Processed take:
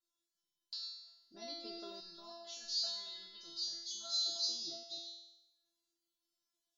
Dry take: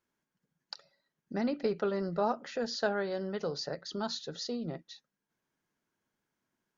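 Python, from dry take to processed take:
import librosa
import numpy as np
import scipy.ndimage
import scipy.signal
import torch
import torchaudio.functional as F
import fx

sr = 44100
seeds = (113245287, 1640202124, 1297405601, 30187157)

y = fx.reverse_delay(x, sr, ms=156, wet_db=-7.5)
y = fx.high_shelf_res(y, sr, hz=2800.0, db=9.5, q=3.0)
y = fx.comb_fb(y, sr, f0_hz=340.0, decay_s=0.9, harmonics='all', damping=0.0, mix_pct=100)
y = fx.peak_eq(y, sr, hz=480.0, db=-14.5, octaves=2.2, at=(2.0, 4.26))
y = F.gain(torch.from_numpy(y), 9.5).numpy()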